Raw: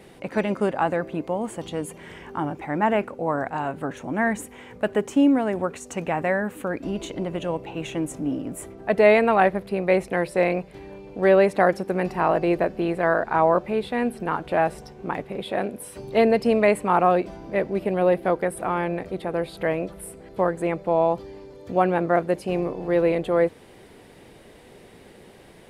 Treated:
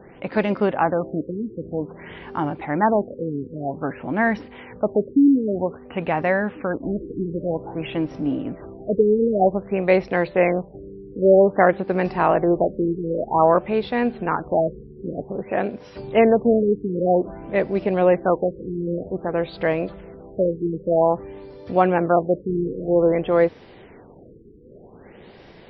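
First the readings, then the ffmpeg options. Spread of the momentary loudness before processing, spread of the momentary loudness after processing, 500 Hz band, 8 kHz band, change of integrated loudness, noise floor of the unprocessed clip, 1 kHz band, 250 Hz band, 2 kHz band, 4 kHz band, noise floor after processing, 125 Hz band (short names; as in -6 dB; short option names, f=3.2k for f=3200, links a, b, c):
12 LU, 12 LU, +2.5 dB, under -25 dB, +2.0 dB, -49 dBFS, +0.5 dB, +3.0 dB, -0.5 dB, n/a, -46 dBFS, +3.0 dB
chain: -af "afftfilt=real='re*lt(b*sr/1024,460*pow(5900/460,0.5+0.5*sin(2*PI*0.52*pts/sr)))':imag='im*lt(b*sr/1024,460*pow(5900/460,0.5+0.5*sin(2*PI*0.52*pts/sr)))':win_size=1024:overlap=0.75,volume=3dB"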